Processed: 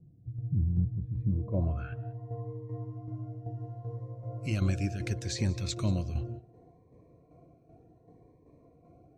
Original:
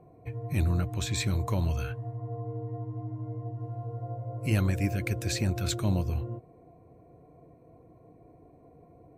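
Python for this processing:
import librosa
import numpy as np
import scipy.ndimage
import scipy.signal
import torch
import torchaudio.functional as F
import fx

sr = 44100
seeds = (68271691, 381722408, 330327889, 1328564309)

p1 = fx.filter_sweep_lowpass(x, sr, from_hz=170.0, to_hz=6200.0, start_s=1.23, end_s=2.21, q=1.5)
p2 = fx.tremolo_shape(p1, sr, shape='saw_down', hz=2.6, depth_pct=55)
p3 = p2 + fx.echo_single(p2, sr, ms=185, db=-21.5, dry=0)
y = fx.notch_cascade(p3, sr, direction='rising', hz=0.69)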